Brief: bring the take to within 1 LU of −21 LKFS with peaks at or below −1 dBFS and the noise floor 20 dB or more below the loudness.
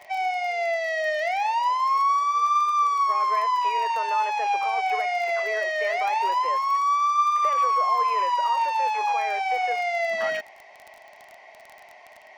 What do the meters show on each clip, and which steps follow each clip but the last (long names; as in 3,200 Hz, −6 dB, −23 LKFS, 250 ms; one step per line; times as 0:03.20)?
crackle rate 27 per second; integrated loudness −23.0 LKFS; sample peak −13.5 dBFS; target loudness −21.0 LKFS
→ click removal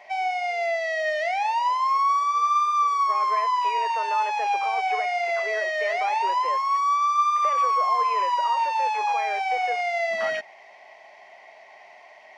crackle rate 0 per second; integrated loudness −23.0 LKFS; sample peak −13.5 dBFS; target loudness −21.0 LKFS
→ level +2 dB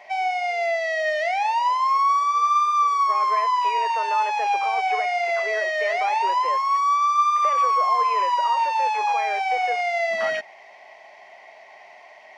integrated loudness −21.0 LKFS; sample peak −11.5 dBFS; background noise floor −47 dBFS